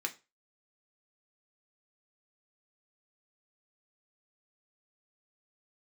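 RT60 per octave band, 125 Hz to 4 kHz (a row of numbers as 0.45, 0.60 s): 0.30, 0.25, 0.30, 0.30, 0.25, 0.25 s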